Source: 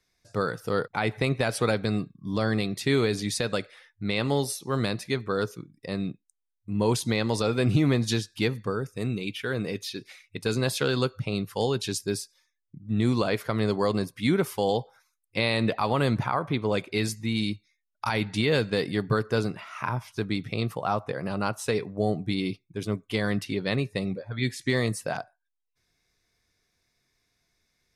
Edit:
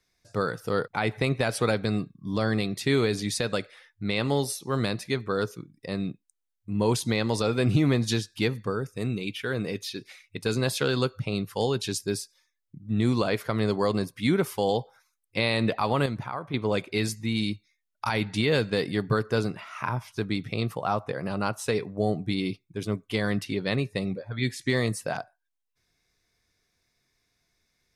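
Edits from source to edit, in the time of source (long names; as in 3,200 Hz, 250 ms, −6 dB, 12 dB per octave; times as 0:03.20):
0:16.06–0:16.54: clip gain −7 dB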